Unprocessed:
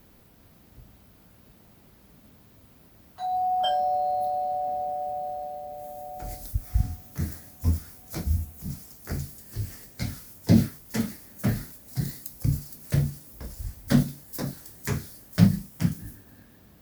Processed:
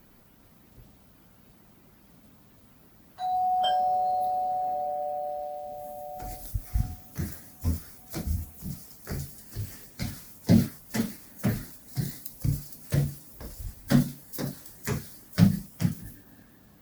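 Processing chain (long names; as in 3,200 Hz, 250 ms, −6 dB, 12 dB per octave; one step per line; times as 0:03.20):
spectral magnitudes quantised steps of 15 dB
parametric band 74 Hz −5 dB 1.2 octaves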